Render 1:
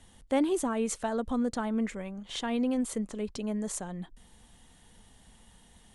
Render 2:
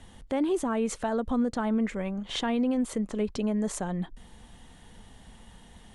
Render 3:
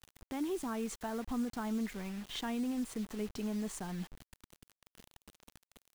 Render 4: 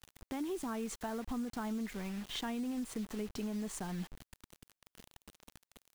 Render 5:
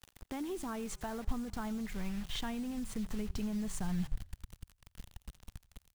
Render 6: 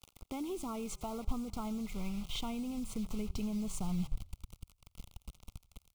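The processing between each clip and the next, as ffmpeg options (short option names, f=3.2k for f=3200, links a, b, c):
-af "aemphasis=mode=reproduction:type=cd,alimiter=level_in=2.5dB:limit=-24dB:level=0:latency=1:release=250,volume=-2.5dB,volume=7dB"
-af "equalizer=f=550:t=o:w=0.33:g=-11,acrusher=bits=6:mix=0:aa=0.000001,volume=-8.5dB"
-af "acompressor=threshold=-36dB:ratio=6,volume=1.5dB"
-filter_complex "[0:a]asubboost=boost=8.5:cutoff=120,asplit=5[a][b][c][d][e];[b]adelay=86,afreqshift=-32,volume=-22dB[f];[c]adelay=172,afreqshift=-64,volume=-26.7dB[g];[d]adelay=258,afreqshift=-96,volume=-31.5dB[h];[e]adelay=344,afreqshift=-128,volume=-36.2dB[i];[a][f][g][h][i]amix=inputs=5:normalize=0"
-af "asuperstop=centerf=1700:order=8:qfactor=2.4"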